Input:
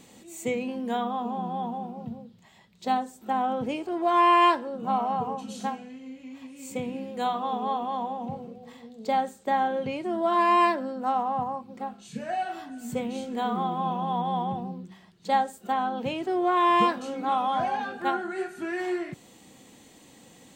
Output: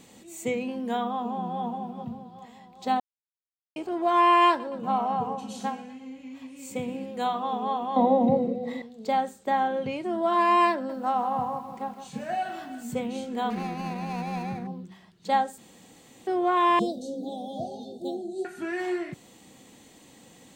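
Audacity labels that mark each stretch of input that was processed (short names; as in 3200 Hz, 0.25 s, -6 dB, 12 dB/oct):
1.110000	1.630000	echo throw 0.41 s, feedback 65%, level -12 dB
3.000000	3.760000	mute
4.480000	7.060000	feedback echo 0.118 s, feedback 56%, level -18.5 dB
7.960000	8.820000	small resonant body resonances 290/530/2000/3800 Hz, height 18 dB, ringing for 25 ms
10.730000	12.830000	lo-fi delay 0.162 s, feedback 55%, word length 9-bit, level -11 dB
13.500000	14.670000	median filter over 41 samples
15.580000	16.270000	room tone
16.790000	18.450000	Chebyshev band-stop 660–3700 Hz, order 4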